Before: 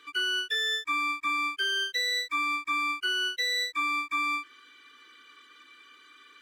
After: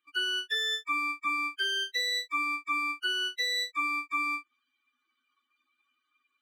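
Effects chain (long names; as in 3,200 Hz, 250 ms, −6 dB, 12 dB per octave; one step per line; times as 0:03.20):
spectral dynamics exaggerated over time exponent 2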